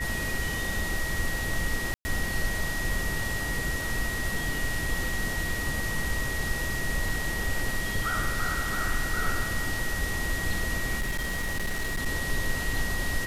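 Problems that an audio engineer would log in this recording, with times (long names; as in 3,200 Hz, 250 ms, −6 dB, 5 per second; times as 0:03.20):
whistle 1,900 Hz −32 dBFS
0:01.94–0:02.05: drop-out 110 ms
0:11.00–0:12.07: clipping −25 dBFS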